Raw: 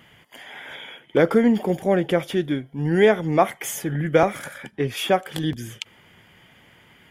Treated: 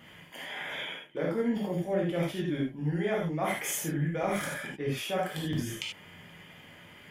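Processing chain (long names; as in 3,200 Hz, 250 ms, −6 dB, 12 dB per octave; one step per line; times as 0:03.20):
reversed playback
downward compressor 6 to 1, threshold −29 dBFS, peak gain reduction 17 dB
reversed playback
reverb whose tail is shaped and stops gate 110 ms flat, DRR −4 dB
level −4 dB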